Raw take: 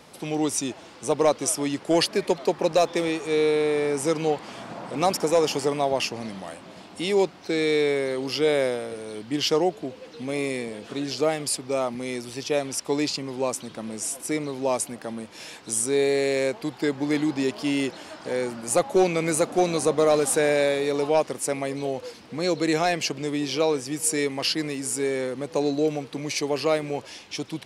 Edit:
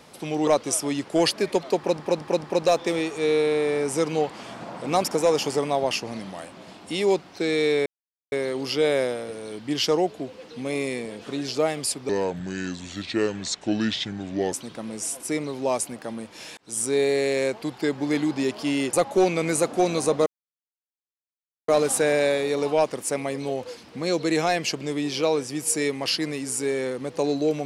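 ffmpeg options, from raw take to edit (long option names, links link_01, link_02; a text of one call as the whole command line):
ffmpeg -i in.wav -filter_complex "[0:a]asplit=11[link_01][link_02][link_03][link_04][link_05][link_06][link_07][link_08][link_09][link_10][link_11];[link_01]atrim=end=0.472[link_12];[link_02]atrim=start=1.218:end=2.742[link_13];[link_03]atrim=start=2.518:end=2.742[link_14];[link_04]atrim=start=2.518:end=2.742[link_15];[link_05]atrim=start=2.518:end=7.95,asetpts=PTS-STARTPTS,afade=type=out:start_time=5.428:duration=0.004:curve=hsin,apad=pad_dur=0.46[link_16];[link_06]atrim=start=7.95:end=11.724,asetpts=PTS-STARTPTS,afade=type=in:duration=0.004:curve=hsin[link_17];[link_07]atrim=start=11.72:end=13.52,asetpts=PTS-STARTPTS,asetrate=32634,aresample=44100,atrim=end_sample=107270,asetpts=PTS-STARTPTS[link_18];[link_08]atrim=start=13.516:end=15.57,asetpts=PTS-STARTPTS,afade=type=out:start_time=2.05:duration=0.004:curve=hsin[link_19];[link_09]atrim=start=15.57:end=17.932,asetpts=PTS-STARTPTS,afade=type=in:duration=0.28[link_20];[link_10]atrim=start=18.718:end=20.05,asetpts=PTS-STARTPTS,afade=type=out:start_time=1.328:duration=0.004:curve=hsin,apad=pad_dur=1.42[link_21];[link_11]atrim=start=20.05,asetpts=PTS-STARTPTS,afade=type=in:duration=0.004:curve=hsin[link_22];[link_12][link_13]acrossfade=duration=0.004:curve1=hsin:curve2=hsin[link_23];[link_23][link_14]acrossfade=duration=0.004:curve1=hsin:curve2=hsin[link_24];[link_24][link_15]acrossfade=duration=0.004:curve1=hsin:curve2=hsin[link_25];[link_16][link_17]concat=n=2:v=0:a=1[link_26];[link_25][link_26]acrossfade=duration=0.004:curve1=hsin:curve2=hsin[link_27];[link_27][link_18]acrossfade=duration=0.004:curve1=hsin:curve2=hsin[link_28];[link_19][link_20]concat=n=2:v=0:a=1[link_29];[link_28][link_29]acrossfade=duration=0.004:curve1=hsin:curve2=hsin[link_30];[link_21][link_22]concat=n=2:v=0:a=1[link_31];[link_30][link_31]acrossfade=duration=0.004:curve1=hsin:curve2=hsin" out.wav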